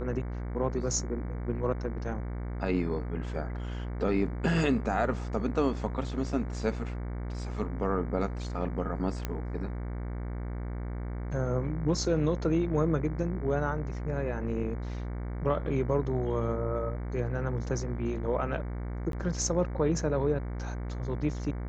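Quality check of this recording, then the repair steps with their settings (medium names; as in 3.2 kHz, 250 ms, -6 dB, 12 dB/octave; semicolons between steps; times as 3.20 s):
buzz 60 Hz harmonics 38 -35 dBFS
9.25 s: pop -17 dBFS
19.12–19.13 s: dropout 12 ms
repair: de-click; de-hum 60 Hz, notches 38; interpolate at 19.12 s, 12 ms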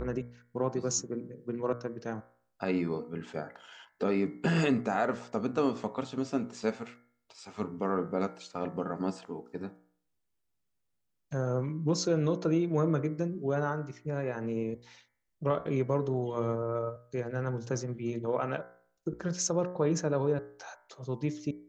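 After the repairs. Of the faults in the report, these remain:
nothing left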